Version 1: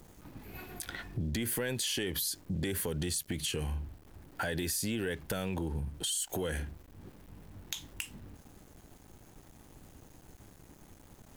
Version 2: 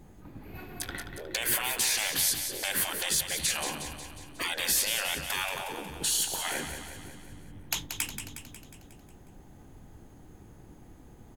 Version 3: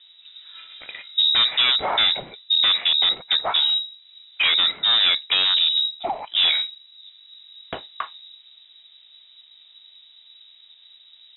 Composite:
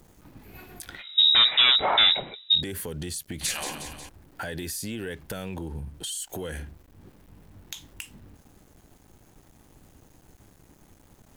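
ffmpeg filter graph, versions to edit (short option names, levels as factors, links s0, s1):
-filter_complex "[0:a]asplit=3[s0][s1][s2];[s0]atrim=end=1.04[s3];[2:a]atrim=start=0.94:end=2.63[s4];[s1]atrim=start=2.53:end=3.412[s5];[1:a]atrim=start=3.408:end=4.092[s6];[s2]atrim=start=4.088[s7];[s3][s4]acrossfade=d=0.1:c1=tri:c2=tri[s8];[s8][s5]acrossfade=d=0.1:c1=tri:c2=tri[s9];[s9][s6]acrossfade=d=0.004:c1=hsin:c2=hsin[s10];[s10][s7]acrossfade=d=0.004:c1=hsin:c2=hsin"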